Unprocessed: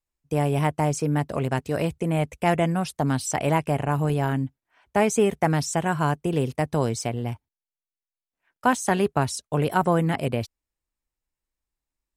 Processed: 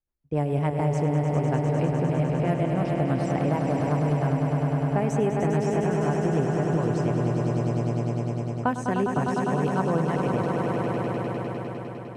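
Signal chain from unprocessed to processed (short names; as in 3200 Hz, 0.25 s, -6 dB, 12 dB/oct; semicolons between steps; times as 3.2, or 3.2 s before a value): high shelf 2200 Hz -11.5 dB; low-pass opened by the level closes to 2300 Hz, open at -17.5 dBFS; rotary speaker horn 7 Hz; on a send: swelling echo 0.101 s, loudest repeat 5, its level -7 dB; on the sum: compressor 2.5:1, threshold -24 dBFS, peak gain reduction 6 dB; gain +2 dB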